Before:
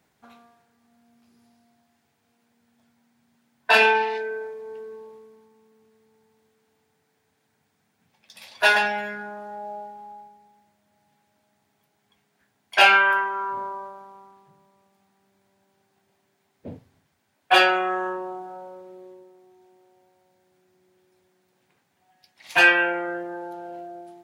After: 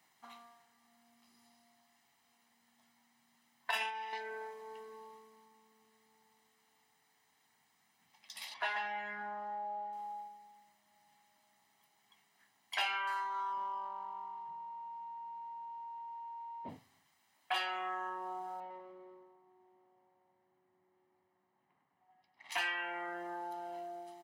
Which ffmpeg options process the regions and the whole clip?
-filter_complex "[0:a]asettb=1/sr,asplit=3[s0][s1][s2];[s0]atrim=end=3.714[s3];[s1]atrim=start=3.71:end=4.13,asetpts=PTS-STARTPTS,afade=t=in:d=0.004:c=qsin,afade=t=out:st=0.416:d=0.004:c=qsin,highshelf=f=7900:g=10.5,agate=range=0.398:threshold=0.141:ratio=16:release=100:detection=peak,asuperstop=centerf=4300:order=12:qfactor=7.1[s4];[s2]atrim=start=4.126[s5];[s3][s4]acrossfade=d=0.004:c1=hsin:c2=qsin[s6];[s6][s5]acrossfade=d=0.004:c1=qsin:c2=hsin,asettb=1/sr,asplit=3[s7][s8][s9];[s7]atrim=end=8.544[s10];[s8]atrim=start=8.54:end=9.93,asetpts=PTS-STARTPTS,afade=t=in:d=0.004:c=qsin,afade=t=out:st=1.386:d=0.004:c=qsin,lowpass=2200,aemphasis=mode=production:type=50fm[s11];[s9]atrim=start=9.926[s12];[s10][s11]acrossfade=d=0.004:c1=hsin:c2=qsin[s13];[s13][s12]acrossfade=d=0.004:c1=qsin:c2=hsin,asettb=1/sr,asplit=3[s14][s15][s16];[s14]atrim=end=13.074[s17];[s15]atrim=start=13.07:end=16.69,asetpts=PTS-STARTPTS,afade=t=in:d=0.004:c=qsin,afade=t=out:st=3.616:d=0.004:c=qsin,aeval=exprs='val(0)+0.00708*sin(2*PI*930*n/s)':c=same,adynamicsmooth=sensitivity=8:basefreq=3200[s18];[s16]atrim=start=16.686[s19];[s17][s18]acrossfade=d=0.004:c1=hsin:c2=qsin[s20];[s20][s19]acrossfade=d=0.004:c1=qsin:c2=hsin,asettb=1/sr,asplit=3[s21][s22][s23];[s21]atrim=end=18.604[s24];[s22]atrim=start=18.6:end=22.52,asetpts=PTS-STARTPTS,afade=t=in:d=0.004:c=qsin,afade=t=out:st=3.916:d=0.004:c=qsin,aecho=1:1:101|202|303|404|505|606|707:0.473|0.251|0.133|0.0704|0.0373|0.0198|0.0105,atrim=end_sample=172872,adynamicsmooth=sensitivity=5.5:basefreq=1100[s25];[s23]atrim=start=22.516[s26];[s24][s25]acrossfade=d=0.004:c1=hsin:c2=qsin[s27];[s27][s26]acrossfade=d=0.004:c1=qsin:c2=hsin,highpass=f=850:p=1,aecho=1:1:1:0.61,acompressor=threshold=0.0126:ratio=3,volume=0.891"

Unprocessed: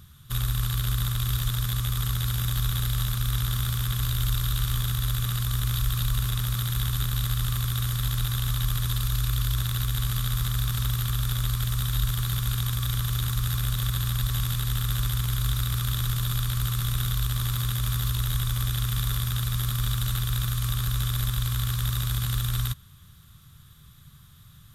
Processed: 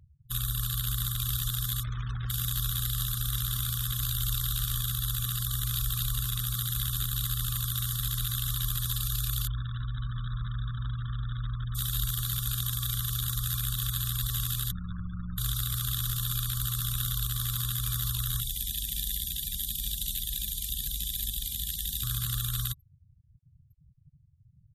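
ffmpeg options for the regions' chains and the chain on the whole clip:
-filter_complex "[0:a]asettb=1/sr,asplit=3[s0][s1][s2];[s0]atrim=end=1.834[s3];[s1]atrim=start=1.83:end=2.3,asetpts=PTS-STARTPTS,afade=t=in:d=0.004:c=qsin,afade=t=out:st=0.466:d=0.004:c=qsin,lowpass=f=2500:w=0.5412,lowpass=f=2500:w=1.3066,acrusher=bits=4:mode=log:mix=0:aa=0.000001[s4];[s2]atrim=start=2.296[s5];[s3][s4]acrossfade=d=0.004:c1=hsin:c2=qsin[s6];[s6][s5]acrossfade=d=0.004:c1=qsin:c2=hsin,asettb=1/sr,asplit=3[s7][s8][s9];[s7]atrim=end=9.474[s10];[s8]atrim=start=9.47:end=11.75,asetpts=PTS-STARTPTS,afade=t=in:d=0.004:c=qsin,afade=t=out:st=2.276:d=0.004:c=qsin,lowpass=2000,bandreject=f=440:w=6.2[s11];[s9]atrim=start=11.746[s12];[s10][s11]acrossfade=d=0.004:c1=hsin:c2=qsin[s13];[s13][s12]acrossfade=d=0.004:c1=qsin:c2=hsin,asettb=1/sr,asplit=3[s14][s15][s16];[s14]atrim=end=14.714[s17];[s15]atrim=start=14.71:end=15.38,asetpts=PTS-STARTPTS,afade=t=in:d=0.004:c=qsin,afade=t=out:st=0.666:d=0.004:c=qsin,lowpass=1700,aeval=exprs='val(0)*sin(2*PI*57*n/s)':c=same[s18];[s16]atrim=start=15.376[s19];[s17][s18]acrossfade=d=0.004:c1=hsin:c2=qsin[s20];[s20][s19]acrossfade=d=0.004:c1=qsin:c2=hsin,asettb=1/sr,asplit=3[s21][s22][s23];[s21]atrim=end=18.404[s24];[s22]atrim=start=18.4:end=22.03,asetpts=PTS-STARTPTS,afade=t=in:d=0.004:c=qsin,afade=t=out:st=3.626:d=0.004:c=qsin,asuperstop=centerf=820:order=8:qfactor=0.59,bandreject=f=60:t=h:w=6,bandreject=f=120:t=h:w=6,bandreject=f=180:t=h:w=6,bandreject=f=240:t=h:w=6,bandreject=f=300:t=h:w=6,bandreject=f=360:t=h:w=6,bandreject=f=420:t=h:w=6,bandreject=f=480:t=h:w=6,bandreject=f=540:t=h:w=6,bandreject=f=600:t=h:w=6[s25];[s23]atrim=start=22.026[s26];[s24][s25]acrossfade=d=0.004:c1=hsin:c2=qsin[s27];[s27][s26]acrossfade=d=0.004:c1=qsin:c2=hsin,highshelf=f=3100:g=9.5,afftfilt=real='re*gte(hypot(re,im),0.02)':imag='im*gte(hypot(re,im),0.02)':win_size=1024:overlap=0.75,volume=0.473"

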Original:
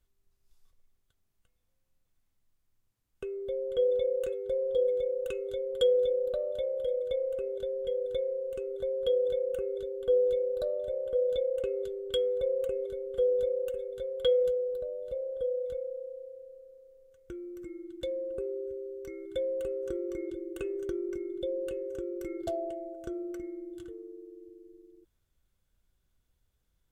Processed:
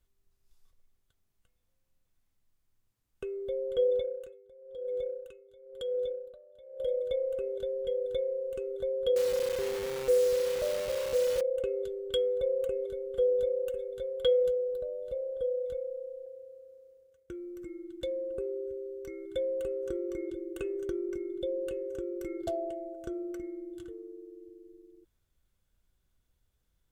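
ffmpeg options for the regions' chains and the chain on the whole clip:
-filter_complex "[0:a]asettb=1/sr,asplit=3[s0][s1][s2];[s0]atrim=end=4.004[s3];[s1]atrim=start=4:end=6.8,asetpts=PTS-STARTPTS,afade=t=in:d=0.004:c=qsin,afade=t=out:st=2.796:d=0.004:c=qsin,acompressor=threshold=0.0282:ratio=2.5:attack=3.2:release=140:knee=1:detection=peak,aeval=exprs='val(0)*pow(10,-22*(0.5-0.5*cos(2*PI*1*n/s))/20)':c=same[s4];[s2]atrim=start=6.796[s5];[s3][s4]acrossfade=d=0.004:c1=hsin:c2=qsin[s6];[s6][s5]acrossfade=d=0.004:c1=qsin:c2=hsin,asettb=1/sr,asplit=3[s7][s8][s9];[s7]atrim=end=9.164[s10];[s8]atrim=start=9.16:end=11.41,asetpts=PTS-STARTPTS,afade=t=in:d=0.004:c=qsin,afade=t=out:st=2.246:d=0.004:c=qsin,aeval=exprs='val(0)+0.5*0.00562*sgn(val(0))':c=same,lowpass=1200,acrusher=bits=7:dc=4:mix=0:aa=0.000001[s11];[s9]atrim=start=11.406[s12];[s10][s11]acrossfade=d=0.004:c1=hsin:c2=qsin[s13];[s13][s12]acrossfade=d=0.004:c1=qsin:c2=hsin,asettb=1/sr,asplit=3[s14][s15][s16];[s14]atrim=end=16.264[s17];[s15]atrim=start=16.26:end=17.4,asetpts=PTS-STARTPTS,afade=t=in:d=0.004:c=qsin,afade=t=out:st=1.136:d=0.004:c=qsin,highpass=54,agate=range=0.0224:threshold=0.00141:ratio=3:release=100:detection=peak[s18];[s16]atrim=start=17.396[s19];[s17][s18]acrossfade=d=0.004:c1=hsin:c2=qsin[s20];[s20][s19]acrossfade=d=0.004:c1=qsin:c2=hsin"

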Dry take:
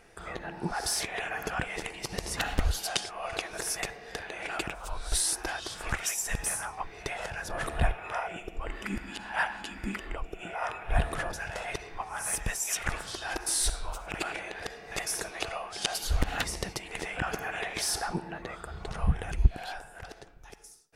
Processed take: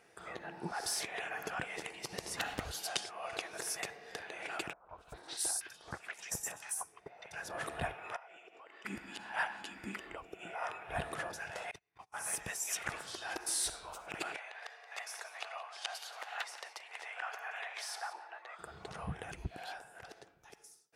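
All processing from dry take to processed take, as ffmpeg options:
-filter_complex "[0:a]asettb=1/sr,asplit=3[s0][s1][s2];[s0]atrim=end=4.734[s3];[s1]atrim=start=4.73:end=7.33,asetpts=PTS-STARTPTS,afade=t=in:d=0.004:c=qsin,afade=t=out:st=2.596:d=0.004:c=qsin,agate=range=0.282:threshold=0.02:ratio=16:release=100:detection=peak,acrossover=split=1500|4500[s4][s5][s6];[s5]adelay=160[s7];[s6]adelay=250[s8];[s4][s7][s8]amix=inputs=3:normalize=0,atrim=end_sample=114660[s9];[s2]atrim=start=7.326[s10];[s3][s9]acrossfade=d=0.004:c1=hsin:c2=qsin[s11];[s11][s10]acrossfade=d=0.004:c1=qsin:c2=hsin,asettb=1/sr,asplit=3[s12][s13][s14];[s12]atrim=end=8.164[s15];[s13]atrim=start=8.16:end=8.85,asetpts=PTS-STARTPTS,afade=t=in:d=0.004:c=qsin,afade=t=out:st=0.686:d=0.004:c=qsin,highpass=470,lowpass=6000,acompressor=threshold=0.00501:ratio=6:attack=3.2:release=140:knee=1:detection=peak[s16];[s14]atrim=start=8.846[s17];[s15][s16]acrossfade=d=0.004:c1=hsin:c2=qsin[s18];[s18][s17]acrossfade=d=0.004:c1=qsin:c2=hsin,asettb=1/sr,asplit=3[s19][s20][s21];[s19]atrim=end=11.714[s22];[s20]atrim=start=11.71:end=12.14,asetpts=PTS-STARTPTS,afade=t=in:d=0.004:c=qsin,afade=t=out:st=0.426:d=0.004:c=qsin,agate=range=0.0447:threshold=0.0126:ratio=16:release=100:detection=peak,equalizer=f=470:w=0.83:g=-10,acrossover=split=750|3200[s23][s24][s25];[s23]acompressor=threshold=0.00631:ratio=4[s26];[s24]acompressor=threshold=0.002:ratio=4[s27];[s25]acompressor=threshold=0.00158:ratio=4[s28];[s26][s27][s28]amix=inputs=3:normalize=0[s29];[s21]atrim=start=12.136[s30];[s22][s29]acrossfade=d=0.004:c1=hsin:c2=qsin[s31];[s31][s30]acrossfade=d=0.004:c1=qsin:c2=hsin,asettb=1/sr,asplit=3[s32][s33][s34];[s32]atrim=end=14.364[s35];[s33]atrim=start=14.36:end=18.59,asetpts=PTS-STARTPTS,afade=t=in:d=0.004:c=qsin,afade=t=out:st=4.226:d=0.004:c=qsin,highpass=f=680:w=0.5412,highpass=f=680:w=1.3066,highshelf=f=5200:g=-12,aecho=1:1:176:0.188,atrim=end_sample=186543[s36];[s34]atrim=start=18.586[s37];[s35][s36]acrossfade=d=0.004:c1=hsin:c2=qsin[s38];[s38][s37]acrossfade=d=0.004:c1=qsin:c2=hsin,highpass=140,equalizer=f=220:w=1.7:g=-3,volume=0.501"

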